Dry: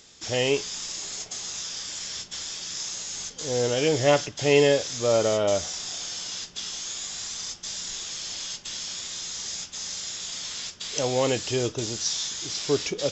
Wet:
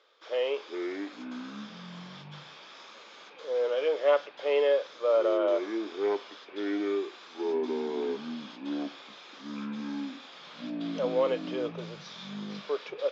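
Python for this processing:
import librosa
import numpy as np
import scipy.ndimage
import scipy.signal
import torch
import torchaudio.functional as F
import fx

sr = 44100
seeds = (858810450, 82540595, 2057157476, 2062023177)

y = fx.cabinet(x, sr, low_hz=470.0, low_slope=24, high_hz=3000.0, hz=(520.0, 770.0, 1200.0, 1900.0, 2700.0), db=(5, -7, 5, -7, -8))
y = fx.echo_pitch(y, sr, ms=271, semitones=-6, count=3, db_per_echo=-6.0)
y = y * 10.0 ** (-3.0 / 20.0)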